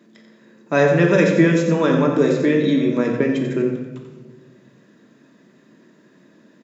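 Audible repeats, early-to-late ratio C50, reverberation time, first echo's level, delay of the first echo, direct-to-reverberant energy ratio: 1, 3.5 dB, 1.2 s, -8.0 dB, 89 ms, 0.5 dB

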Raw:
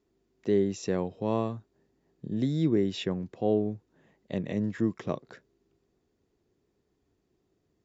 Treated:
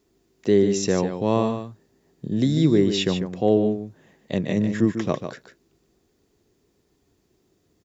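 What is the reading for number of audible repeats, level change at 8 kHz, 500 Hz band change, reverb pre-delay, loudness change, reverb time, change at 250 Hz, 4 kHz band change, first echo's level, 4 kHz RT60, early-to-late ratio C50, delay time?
1, n/a, +7.5 dB, none, +7.5 dB, none, +7.5 dB, +11.5 dB, -8.5 dB, none, none, 0.147 s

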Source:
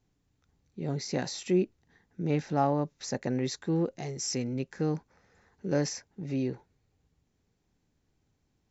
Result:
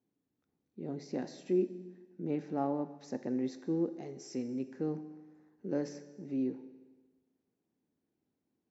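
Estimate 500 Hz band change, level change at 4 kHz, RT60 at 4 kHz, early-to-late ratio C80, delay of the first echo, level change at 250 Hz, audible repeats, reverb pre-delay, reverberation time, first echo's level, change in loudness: -4.5 dB, -16.5 dB, 1.3 s, 13.5 dB, none, -3.0 dB, none, 7 ms, 1.3 s, none, -5.0 dB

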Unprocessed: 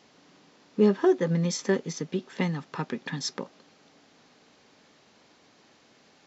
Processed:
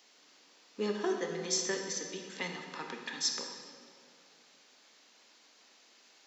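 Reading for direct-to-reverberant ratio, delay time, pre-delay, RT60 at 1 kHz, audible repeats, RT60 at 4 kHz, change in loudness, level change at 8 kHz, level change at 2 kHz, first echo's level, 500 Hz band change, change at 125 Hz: 2.5 dB, none, 22 ms, 2.0 s, none, 1.4 s, -8.0 dB, n/a, -3.0 dB, none, -10.0 dB, -19.5 dB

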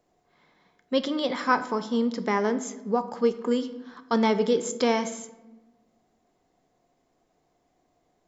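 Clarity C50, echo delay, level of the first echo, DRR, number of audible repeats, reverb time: 13.0 dB, none, none, 10.0 dB, none, 1.1 s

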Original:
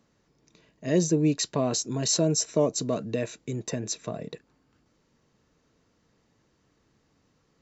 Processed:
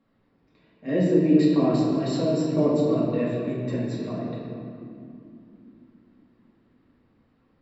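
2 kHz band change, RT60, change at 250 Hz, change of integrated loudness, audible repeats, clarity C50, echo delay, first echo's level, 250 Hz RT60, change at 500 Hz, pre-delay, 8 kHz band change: +1.0 dB, 2.8 s, +7.0 dB, +3.5 dB, none, -1.0 dB, none, none, 4.9 s, +3.5 dB, 4 ms, n/a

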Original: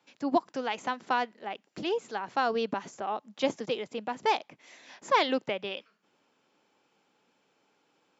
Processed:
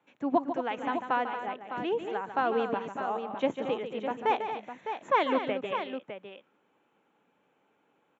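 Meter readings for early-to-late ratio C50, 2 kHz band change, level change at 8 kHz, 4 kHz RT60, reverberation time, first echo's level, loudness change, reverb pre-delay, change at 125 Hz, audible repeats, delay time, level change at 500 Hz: none, -1.0 dB, n/a, none, none, -9.5 dB, 0.0 dB, none, +1.0 dB, 3, 0.147 s, +1.0 dB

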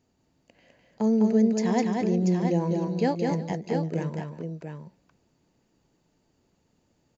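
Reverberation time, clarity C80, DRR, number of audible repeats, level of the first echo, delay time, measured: none, none, none, 3, -3.5 dB, 0.204 s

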